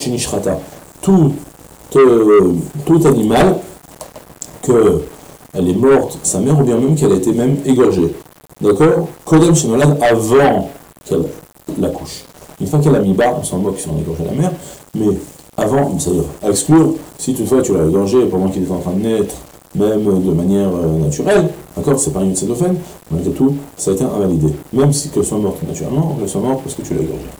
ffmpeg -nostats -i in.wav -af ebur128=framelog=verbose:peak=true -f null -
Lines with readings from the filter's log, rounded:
Integrated loudness:
  I:         -14.2 LUFS
  Threshold: -24.7 LUFS
Loudness range:
  LRA:         4.2 LU
  Threshold: -34.6 LUFS
  LRA low:   -16.7 LUFS
  LRA high:  -12.5 LUFS
True peak:
  Peak:       -1.4 dBFS